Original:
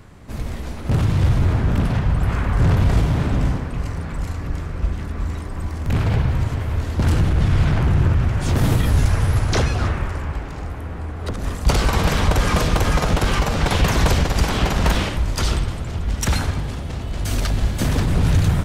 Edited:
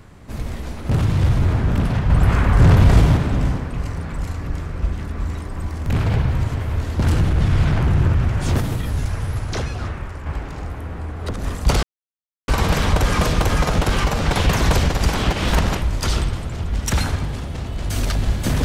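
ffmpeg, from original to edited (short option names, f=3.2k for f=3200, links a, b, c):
-filter_complex "[0:a]asplit=8[a][b][c][d][e][f][g][h];[a]atrim=end=2.102[i];[b]atrim=start=2.098:end=3.172,asetpts=PTS-STARTPTS,volume=4.5dB[j];[c]atrim=start=3.168:end=8.612[k];[d]atrim=start=8.608:end=10.262,asetpts=PTS-STARTPTS,volume=-6dB[l];[e]atrim=start=10.258:end=11.83,asetpts=PTS-STARTPTS,afade=t=out:st=1.568:d=0.004:c=hsin,apad=pad_dur=0.65[m];[f]atrim=start=11.83:end=14.682,asetpts=PTS-STARTPTS,afade=t=in:d=0.004:c=hsin[n];[g]atrim=start=14.678:end=15.122,asetpts=PTS-STARTPTS,areverse[o];[h]atrim=start=15.118[p];[i][j]acrossfade=d=0.004:c1=hsin:c2=hsin[q];[q][k]acrossfade=d=0.004:c1=hsin:c2=hsin[r];[r][l]acrossfade=d=0.004:c1=hsin:c2=hsin[s];[m][n]concat=n=2:v=0:a=1[t];[s][t]acrossfade=d=0.004:c1=hsin:c2=hsin[u];[u][o]acrossfade=d=0.004:c1=hsin:c2=hsin[v];[v][p]acrossfade=d=0.004:c1=hsin:c2=hsin"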